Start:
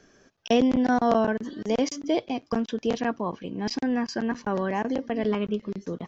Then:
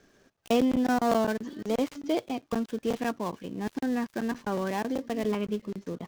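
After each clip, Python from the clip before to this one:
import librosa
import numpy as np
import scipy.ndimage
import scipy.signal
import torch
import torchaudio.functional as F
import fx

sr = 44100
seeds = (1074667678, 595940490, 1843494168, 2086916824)

y = fx.dead_time(x, sr, dead_ms=0.12)
y = y * librosa.db_to_amplitude(-3.0)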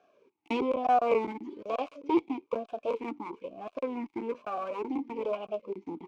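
y = fx.cheby_harmonics(x, sr, harmonics=(6,), levels_db=(-13,), full_scale_db=-11.5)
y = fx.vowel_sweep(y, sr, vowels='a-u', hz=1.1)
y = y * librosa.db_to_amplitude(8.5)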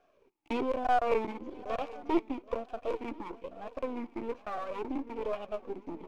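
y = np.where(x < 0.0, 10.0 ** (-7.0 / 20.0) * x, x)
y = fx.echo_swing(y, sr, ms=1038, ratio=3, feedback_pct=31, wet_db=-19)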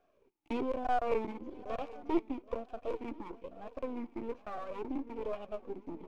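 y = fx.low_shelf(x, sr, hz=460.0, db=5.5)
y = y * librosa.db_to_amplitude(-6.0)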